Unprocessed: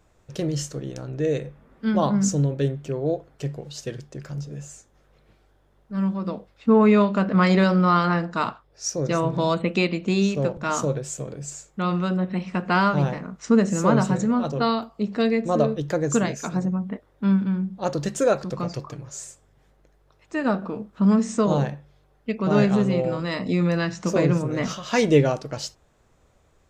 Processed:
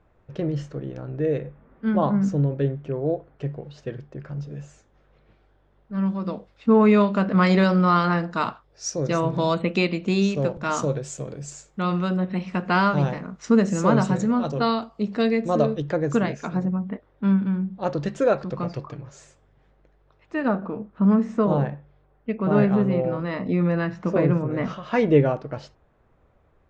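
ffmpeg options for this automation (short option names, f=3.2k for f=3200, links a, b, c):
-af "asetnsamples=n=441:p=0,asendcmd='4.41 lowpass f 3400;6.06 lowpass f 6700;15.81 lowpass f 3200;20.48 lowpass f 2000',lowpass=2.1k"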